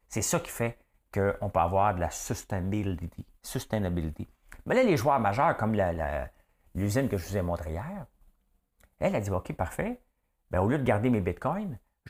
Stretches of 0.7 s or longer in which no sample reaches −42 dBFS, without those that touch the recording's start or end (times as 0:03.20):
0:08.04–0:09.01